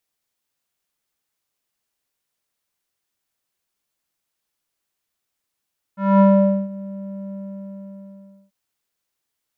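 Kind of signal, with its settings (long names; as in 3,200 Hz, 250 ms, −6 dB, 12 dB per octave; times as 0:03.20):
subtractive voice square G3 12 dB per octave, low-pass 460 Hz, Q 2.4, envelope 1.5 octaves, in 0.64 s, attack 232 ms, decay 0.48 s, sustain −20.5 dB, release 1.18 s, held 1.36 s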